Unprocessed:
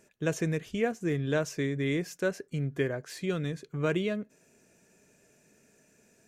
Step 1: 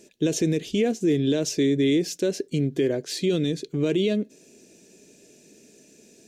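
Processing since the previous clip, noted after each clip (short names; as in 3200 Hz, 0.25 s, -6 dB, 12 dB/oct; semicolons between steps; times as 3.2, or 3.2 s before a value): EQ curve 120 Hz 0 dB, 330 Hz +13 dB, 1300 Hz -8 dB, 3700 Hz +13 dB, 13000 Hz +4 dB; limiter -17 dBFS, peak gain reduction 8.5 dB; gain +2.5 dB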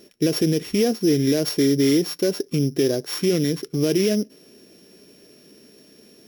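sample sorter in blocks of 8 samples; gain +3 dB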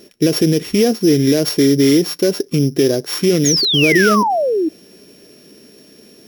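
painted sound fall, 3.45–4.69, 300–6900 Hz -22 dBFS; gain +6 dB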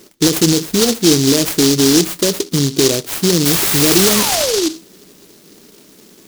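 on a send at -13 dB: reverb RT60 0.35 s, pre-delay 3 ms; on the sum: noise-modulated delay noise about 4900 Hz, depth 0.24 ms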